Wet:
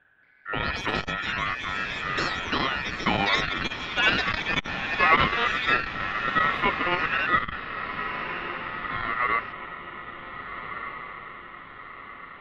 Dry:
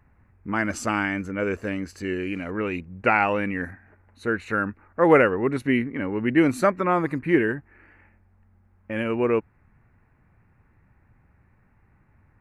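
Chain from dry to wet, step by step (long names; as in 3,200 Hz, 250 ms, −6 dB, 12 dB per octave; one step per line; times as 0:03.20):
feedback delay with all-pass diffusion 1,583 ms, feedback 52%, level −9 dB
ring modulation 1,600 Hz
high-frequency loss of the air 460 metres
delay with pitch and tempo change per echo 229 ms, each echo +5 semitones, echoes 2
saturating transformer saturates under 490 Hz
level +3 dB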